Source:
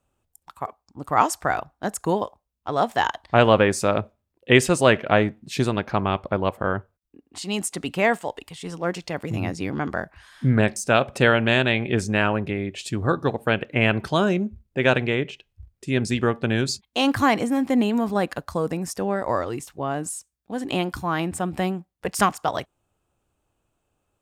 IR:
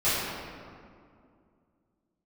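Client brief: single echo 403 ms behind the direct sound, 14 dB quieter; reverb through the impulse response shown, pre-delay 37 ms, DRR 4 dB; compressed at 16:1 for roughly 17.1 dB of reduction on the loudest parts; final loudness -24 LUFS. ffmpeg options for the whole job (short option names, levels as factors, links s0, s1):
-filter_complex "[0:a]acompressor=threshold=0.0447:ratio=16,aecho=1:1:403:0.2,asplit=2[s0][s1];[1:a]atrim=start_sample=2205,adelay=37[s2];[s1][s2]afir=irnorm=-1:irlink=0,volume=0.119[s3];[s0][s3]amix=inputs=2:normalize=0,volume=2.37"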